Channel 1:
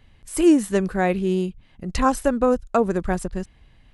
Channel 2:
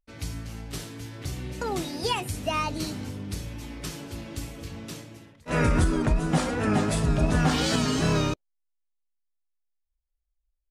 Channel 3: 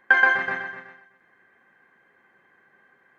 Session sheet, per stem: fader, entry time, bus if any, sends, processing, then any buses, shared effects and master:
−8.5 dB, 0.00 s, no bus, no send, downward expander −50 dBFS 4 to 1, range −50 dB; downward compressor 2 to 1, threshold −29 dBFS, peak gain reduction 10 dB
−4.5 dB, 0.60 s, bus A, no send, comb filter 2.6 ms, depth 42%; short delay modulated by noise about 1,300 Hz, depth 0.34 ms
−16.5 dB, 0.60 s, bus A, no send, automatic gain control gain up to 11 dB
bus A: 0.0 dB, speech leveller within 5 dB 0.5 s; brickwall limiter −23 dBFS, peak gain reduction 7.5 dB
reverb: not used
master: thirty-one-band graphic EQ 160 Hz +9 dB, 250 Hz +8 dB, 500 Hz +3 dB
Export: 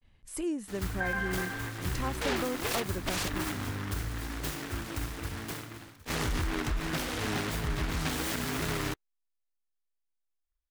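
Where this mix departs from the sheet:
stem 3: entry 0.60 s → 0.90 s
master: missing thirty-one-band graphic EQ 160 Hz +9 dB, 250 Hz +8 dB, 500 Hz +3 dB

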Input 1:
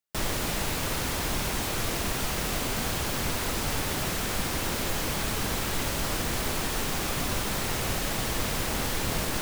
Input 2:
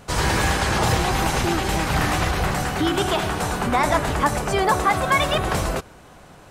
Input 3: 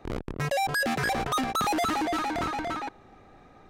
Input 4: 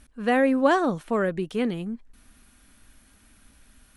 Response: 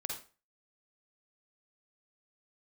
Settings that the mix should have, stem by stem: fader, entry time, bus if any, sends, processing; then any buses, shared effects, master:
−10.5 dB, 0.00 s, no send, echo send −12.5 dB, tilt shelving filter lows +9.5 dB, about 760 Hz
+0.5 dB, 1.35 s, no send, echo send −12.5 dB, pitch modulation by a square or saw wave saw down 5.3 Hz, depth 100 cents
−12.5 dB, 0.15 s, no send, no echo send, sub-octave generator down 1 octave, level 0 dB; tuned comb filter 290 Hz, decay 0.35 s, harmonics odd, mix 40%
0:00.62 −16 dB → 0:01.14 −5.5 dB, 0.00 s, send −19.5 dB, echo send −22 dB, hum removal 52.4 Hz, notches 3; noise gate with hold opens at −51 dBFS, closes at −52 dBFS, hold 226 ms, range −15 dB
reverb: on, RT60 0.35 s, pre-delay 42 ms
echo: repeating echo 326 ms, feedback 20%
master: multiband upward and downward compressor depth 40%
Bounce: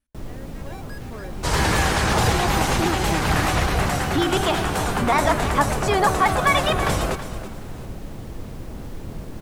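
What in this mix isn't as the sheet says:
stem 4 −16.0 dB → −26.0 dB
master: missing multiband upward and downward compressor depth 40%

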